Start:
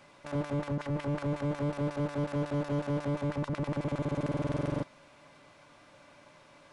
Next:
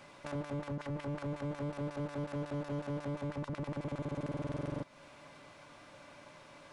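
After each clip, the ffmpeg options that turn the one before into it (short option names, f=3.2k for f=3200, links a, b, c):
-af "acompressor=threshold=-41dB:ratio=3,volume=2dB"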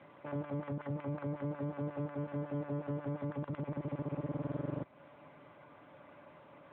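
-af "adynamicsmooth=sensitivity=3.5:basefreq=2.4k,volume=1dB" -ar 8000 -c:a libopencore_amrnb -b:a 10200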